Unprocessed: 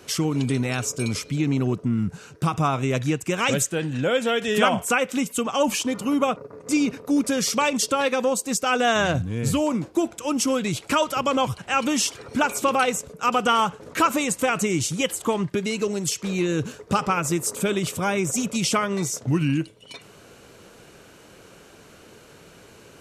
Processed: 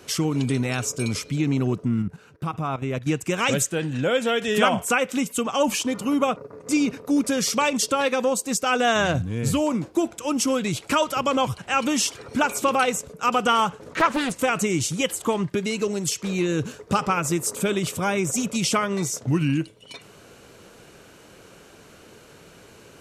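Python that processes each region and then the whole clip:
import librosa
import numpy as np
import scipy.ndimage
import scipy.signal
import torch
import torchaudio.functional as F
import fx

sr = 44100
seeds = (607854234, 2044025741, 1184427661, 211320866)

y = fx.chain(x, sr, fx.peak_eq(hz=6900.0, db=-9.5, octaves=1.5),
    fx.level_steps(step_db=13), at=(2.02, 3.07))
y = fx.chain(y, sr, fx.lowpass(hz=5100.0, slope=12),
    fx.doppler_dist(depth_ms=0.52), at=(13.95, 14.36))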